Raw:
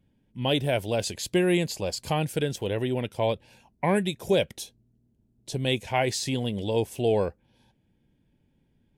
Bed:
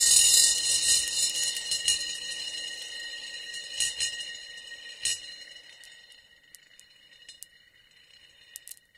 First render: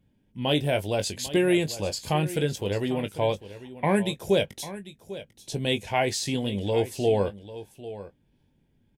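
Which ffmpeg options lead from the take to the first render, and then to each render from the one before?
-filter_complex "[0:a]asplit=2[a][b];[b]adelay=20,volume=-9dB[c];[a][c]amix=inputs=2:normalize=0,aecho=1:1:796:0.178"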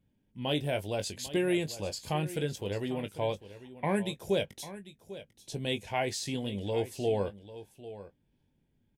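-af "volume=-6.5dB"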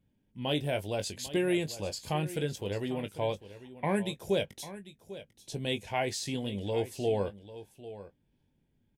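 -af anull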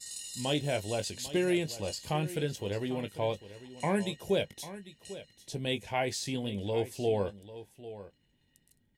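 -filter_complex "[1:a]volume=-23dB[a];[0:a][a]amix=inputs=2:normalize=0"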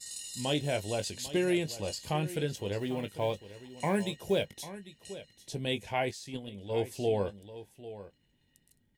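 -filter_complex "[0:a]asettb=1/sr,asplit=3[a][b][c];[a]atrim=end=2.784[d];[b]atrim=start=2.78:end=4.58,asetpts=PTS-STARTPTS,afade=t=in:d=0.004:c=qsin,afade=t=out:st=1.796:d=0.004:c=qsin,acrusher=bits=8:mode=log:mix=0:aa=0.000001[e];[c]atrim=start=4.576[f];[d][e]acrossfade=d=0.004:c1=hsin:c2=qsin[g];[g][f]acrossfade=d=0.004:c1=qsin:c2=hsin,asettb=1/sr,asplit=3[h][i][j];[h]atrim=end=6.114[k];[i]atrim=start=6.11:end=6.82,asetpts=PTS-STARTPTS,afade=t=in:d=0.004:c=qsin,afade=t=out:st=0.706:d=0.004:c=qsin,agate=range=-9dB:threshold=-33dB:ratio=16:release=100:detection=peak[l];[j]atrim=start=6.816[m];[k][l]acrossfade=d=0.004:c1=hsin:c2=qsin[n];[n][m]acrossfade=d=0.004:c1=qsin:c2=hsin"

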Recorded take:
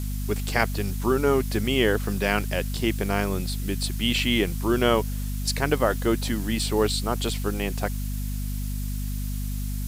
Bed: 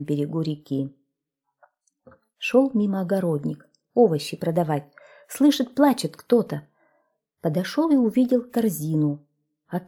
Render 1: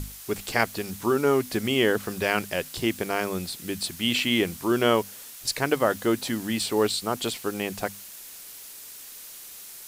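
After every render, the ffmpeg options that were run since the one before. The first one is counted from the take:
-af "bandreject=f=50:t=h:w=6,bandreject=f=100:t=h:w=6,bandreject=f=150:t=h:w=6,bandreject=f=200:t=h:w=6,bandreject=f=250:t=h:w=6"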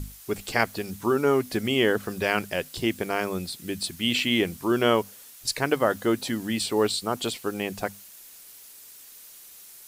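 -af "afftdn=nr=6:nf=-43"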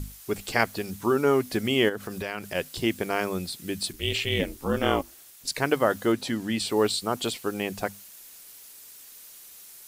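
-filter_complex "[0:a]asplit=3[a][b][c];[a]afade=t=out:st=1.88:d=0.02[d];[b]acompressor=threshold=-30dB:ratio=3:attack=3.2:release=140:knee=1:detection=peak,afade=t=in:st=1.88:d=0.02,afade=t=out:st=2.54:d=0.02[e];[c]afade=t=in:st=2.54:d=0.02[f];[d][e][f]amix=inputs=3:normalize=0,asplit=3[g][h][i];[g]afade=t=out:st=3.92:d=0.02[j];[h]aeval=exprs='val(0)*sin(2*PI*140*n/s)':c=same,afade=t=in:st=3.92:d=0.02,afade=t=out:st=5.53:d=0.02[k];[i]afade=t=in:st=5.53:d=0.02[l];[j][k][l]amix=inputs=3:normalize=0,asettb=1/sr,asplit=3[m][n][o];[m]atrim=end=6.124[p];[n]atrim=start=6.12:end=6.66,asetpts=PTS-STARTPTS,afade=t=in:d=0.004:c=qsin,afade=t=out:st=0.536:d=0.004:c=qsin,highshelf=f=10k:g=-9[q];[o]atrim=start=6.656[r];[p][q]acrossfade=d=0.004:c1=hsin:c2=qsin[s];[s][r]acrossfade=d=0.004:c1=qsin:c2=hsin"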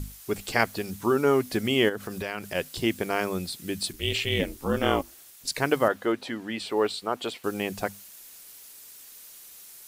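-filter_complex "[0:a]asettb=1/sr,asplit=3[a][b][c];[a]atrim=end=5.884[d];[b]atrim=start=5.88:end=7.44,asetpts=PTS-STARTPTS,afade=t=in:d=0.004:c=qsin,afade=t=out:st=1.556:d=0.004:c=qsin,bass=f=250:g=-11,treble=f=4k:g=-11[e];[c]atrim=start=7.436[f];[d][e]acrossfade=d=0.004:c1=hsin:c2=qsin[g];[g][f]acrossfade=d=0.004:c1=qsin:c2=hsin"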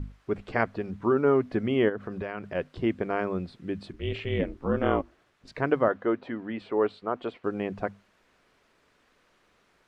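-af "lowpass=1.5k,equalizer=f=830:w=6.4:g=-4.5"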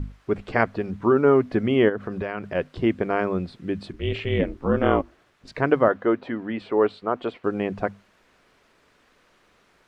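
-af "volume=5dB"

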